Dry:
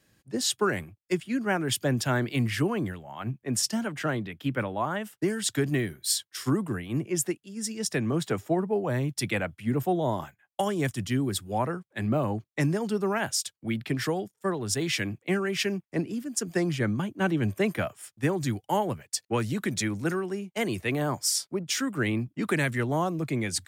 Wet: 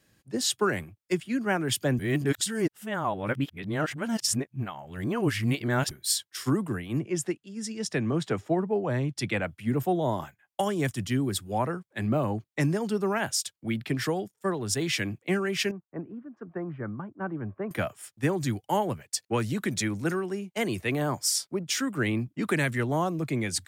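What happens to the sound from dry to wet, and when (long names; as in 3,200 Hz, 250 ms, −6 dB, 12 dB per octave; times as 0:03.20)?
0:01.99–0:05.91: reverse
0:06.99–0:09.43: high-frequency loss of the air 53 metres
0:15.71–0:17.71: transistor ladder low-pass 1,500 Hz, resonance 40%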